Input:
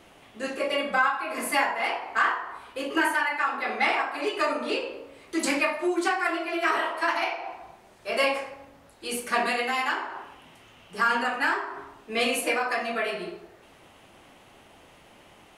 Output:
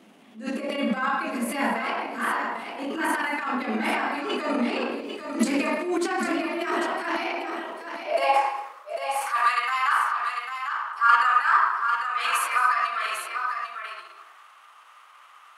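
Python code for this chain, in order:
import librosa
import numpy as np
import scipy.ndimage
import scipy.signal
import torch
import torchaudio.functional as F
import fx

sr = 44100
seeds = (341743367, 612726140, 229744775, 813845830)

y = fx.transient(x, sr, attack_db=-12, sustain_db=10)
y = fx.filter_sweep_highpass(y, sr, from_hz=220.0, to_hz=1200.0, start_s=7.19, end_s=8.73, q=6.7)
y = fx.echo_multitap(y, sr, ms=(161, 224, 797), db=(-18.0, -17.5, -7.0))
y = F.gain(torch.from_numpy(y), -3.5).numpy()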